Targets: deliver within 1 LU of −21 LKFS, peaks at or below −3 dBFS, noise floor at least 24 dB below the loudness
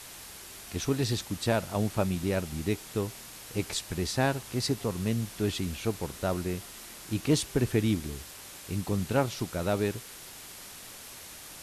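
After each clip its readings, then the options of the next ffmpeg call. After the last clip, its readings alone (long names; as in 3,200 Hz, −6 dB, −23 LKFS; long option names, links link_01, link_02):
background noise floor −46 dBFS; target noise floor −55 dBFS; integrated loudness −31.0 LKFS; sample peak −12.0 dBFS; target loudness −21.0 LKFS
→ -af "afftdn=noise_reduction=9:noise_floor=-46"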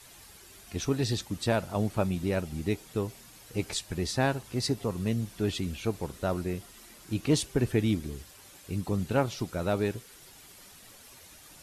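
background noise floor −53 dBFS; target noise floor −55 dBFS
→ -af "afftdn=noise_reduction=6:noise_floor=-53"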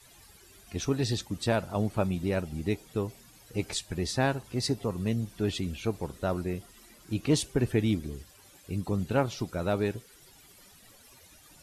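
background noise floor −56 dBFS; integrated loudness −31.0 LKFS; sample peak −12.0 dBFS; target loudness −21.0 LKFS
→ -af "volume=10dB,alimiter=limit=-3dB:level=0:latency=1"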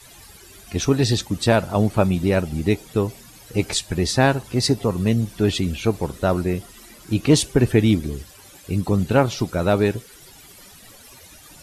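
integrated loudness −21.0 LKFS; sample peak −3.0 dBFS; background noise floor −46 dBFS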